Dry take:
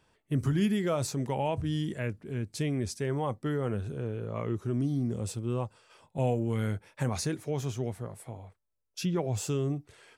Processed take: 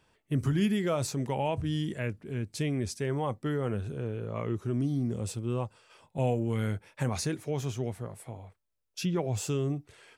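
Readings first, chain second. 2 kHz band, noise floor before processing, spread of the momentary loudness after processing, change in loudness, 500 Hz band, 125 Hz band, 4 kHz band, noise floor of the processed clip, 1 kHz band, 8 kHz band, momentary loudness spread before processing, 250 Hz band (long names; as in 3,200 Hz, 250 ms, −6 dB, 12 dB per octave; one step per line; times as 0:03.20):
+1.0 dB, −77 dBFS, 8 LU, 0.0 dB, 0.0 dB, 0.0 dB, +1.0 dB, −76 dBFS, 0.0 dB, 0.0 dB, 8 LU, 0.0 dB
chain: parametric band 2,600 Hz +2 dB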